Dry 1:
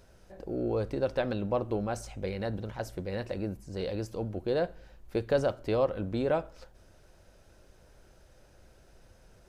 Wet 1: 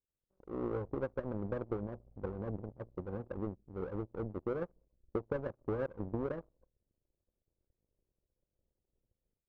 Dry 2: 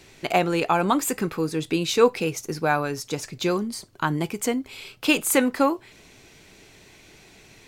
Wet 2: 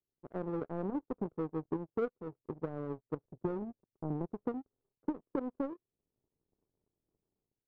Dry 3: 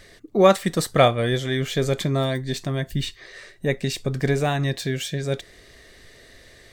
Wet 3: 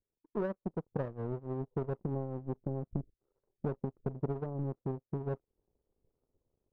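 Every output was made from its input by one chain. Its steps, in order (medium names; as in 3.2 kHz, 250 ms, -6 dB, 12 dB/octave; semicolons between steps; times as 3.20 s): level rider gain up to 6 dB; steep low-pass 530 Hz 36 dB/octave; power-law waveshaper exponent 2; compression 5:1, threshold -34 dBFS; trim +1.5 dB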